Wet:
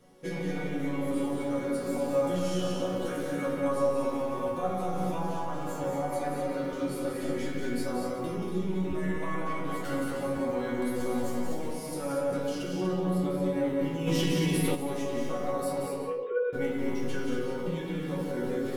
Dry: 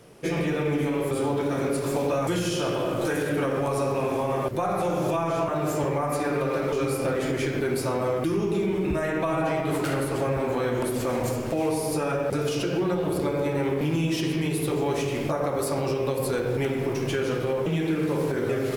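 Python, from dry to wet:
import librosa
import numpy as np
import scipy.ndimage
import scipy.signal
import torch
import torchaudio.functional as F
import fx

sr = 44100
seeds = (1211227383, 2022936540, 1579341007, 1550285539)

p1 = fx.sine_speech(x, sr, at=(15.86, 16.53))
p2 = fx.low_shelf(p1, sr, hz=260.0, db=6.5)
p3 = fx.notch(p2, sr, hz=2500.0, q=13.0)
p4 = fx.resonator_bank(p3, sr, root=54, chord='sus4', decay_s=0.3)
p5 = p4 + fx.echo_multitap(p4, sr, ms=(182, 237, 374), db=(-6.5, -6.0, -15.5), dry=0)
p6 = fx.env_flatten(p5, sr, amount_pct=70, at=(14.06, 14.74), fade=0.02)
y = p6 * librosa.db_to_amplitude(7.5)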